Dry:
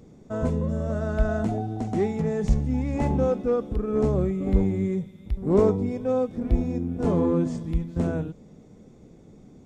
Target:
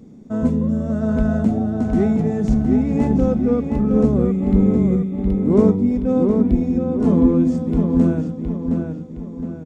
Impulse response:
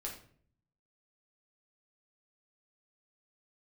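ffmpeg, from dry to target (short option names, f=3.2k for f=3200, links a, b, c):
-filter_complex "[0:a]equalizer=f=230:w=1.9:g=12.5,asplit=2[a][b];[b]adelay=715,lowpass=f=4.2k:p=1,volume=-4.5dB,asplit=2[c][d];[d]adelay=715,lowpass=f=4.2k:p=1,volume=0.44,asplit=2[e][f];[f]adelay=715,lowpass=f=4.2k:p=1,volume=0.44,asplit=2[g][h];[h]adelay=715,lowpass=f=4.2k:p=1,volume=0.44,asplit=2[i][j];[j]adelay=715,lowpass=f=4.2k:p=1,volume=0.44[k];[c][e][g][i][k]amix=inputs=5:normalize=0[l];[a][l]amix=inputs=2:normalize=0"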